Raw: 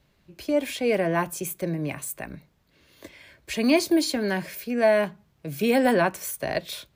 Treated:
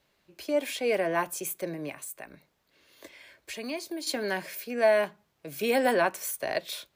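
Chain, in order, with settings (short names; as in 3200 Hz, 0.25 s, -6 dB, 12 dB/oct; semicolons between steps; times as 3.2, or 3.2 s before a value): tone controls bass -13 dB, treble +1 dB; 1.89–4.07 compressor 2:1, threshold -39 dBFS, peak gain reduction 12 dB; gain -2 dB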